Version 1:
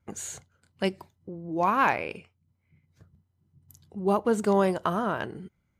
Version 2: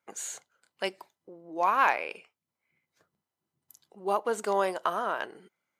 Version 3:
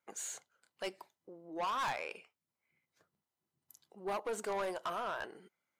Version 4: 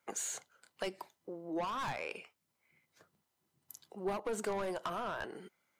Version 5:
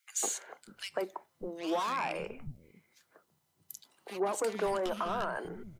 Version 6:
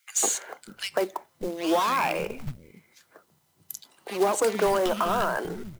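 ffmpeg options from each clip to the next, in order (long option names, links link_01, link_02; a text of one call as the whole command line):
ffmpeg -i in.wav -af "highpass=530" out.wav
ffmpeg -i in.wav -af "asoftclip=type=tanh:threshold=-27.5dB,volume=-4dB" out.wav
ffmpeg -i in.wav -filter_complex "[0:a]acrossover=split=280[link_01][link_02];[link_02]acompressor=threshold=-44dB:ratio=6[link_03];[link_01][link_03]amix=inputs=2:normalize=0,volume=8dB" out.wav
ffmpeg -i in.wav -filter_complex "[0:a]acrossover=split=220|1900[link_01][link_02][link_03];[link_02]adelay=150[link_04];[link_01]adelay=590[link_05];[link_05][link_04][link_03]amix=inputs=3:normalize=0,volume=5.5dB" out.wav
ffmpeg -i in.wav -af "acrusher=bits=4:mode=log:mix=0:aa=0.000001,volume=8.5dB" out.wav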